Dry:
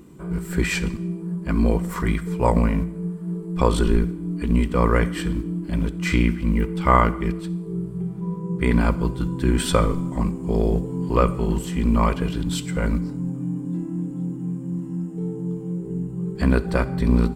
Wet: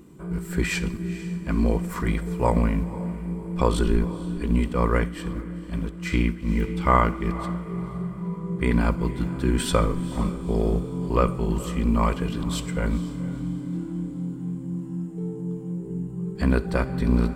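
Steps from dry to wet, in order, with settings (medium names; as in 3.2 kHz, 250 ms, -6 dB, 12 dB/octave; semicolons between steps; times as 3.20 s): echo that smears into a reverb 475 ms, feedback 44%, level -15 dB; 4.73–6.49 s: upward expansion 1.5:1, over -26 dBFS; trim -2.5 dB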